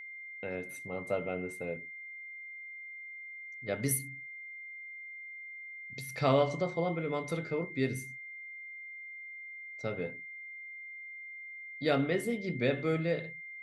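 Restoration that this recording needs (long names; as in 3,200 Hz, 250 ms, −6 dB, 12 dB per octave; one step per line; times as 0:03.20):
notch filter 2,100 Hz, Q 30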